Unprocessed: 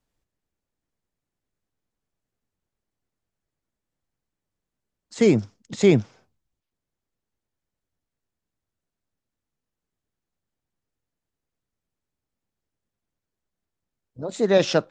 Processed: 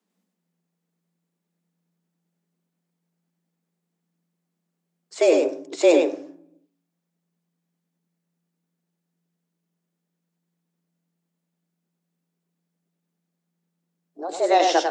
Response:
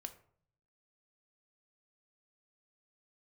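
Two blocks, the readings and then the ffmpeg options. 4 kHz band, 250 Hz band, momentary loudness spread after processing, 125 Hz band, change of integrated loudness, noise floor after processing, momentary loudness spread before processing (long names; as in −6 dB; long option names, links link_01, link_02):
+1.5 dB, −3.5 dB, 17 LU, below −30 dB, +0.5 dB, −80 dBFS, 16 LU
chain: -filter_complex "[0:a]bandreject=frequency=111.3:width_type=h:width=4,bandreject=frequency=222.6:width_type=h:width=4,bandreject=frequency=333.9:width_type=h:width=4,bandreject=frequency=445.2:width_type=h:width=4,bandreject=frequency=556.5:width_type=h:width=4,bandreject=frequency=667.8:width_type=h:width=4,bandreject=frequency=779.1:width_type=h:width=4,bandreject=frequency=890.4:width_type=h:width=4,bandreject=frequency=1001.7:width_type=h:width=4,bandreject=frequency=1113:width_type=h:width=4,bandreject=frequency=1224.3:width_type=h:width=4,bandreject=frequency=1335.6:width_type=h:width=4,bandreject=frequency=1446.9:width_type=h:width=4,bandreject=frequency=1558.2:width_type=h:width=4,bandreject=frequency=1669.5:width_type=h:width=4,bandreject=frequency=1780.8:width_type=h:width=4,bandreject=frequency=1892.1:width_type=h:width=4,asplit=2[link_01][link_02];[1:a]atrim=start_sample=2205,highshelf=frequency=7800:gain=7.5,adelay=98[link_03];[link_02][link_03]afir=irnorm=-1:irlink=0,volume=-0.5dB[link_04];[link_01][link_04]amix=inputs=2:normalize=0,afreqshift=170"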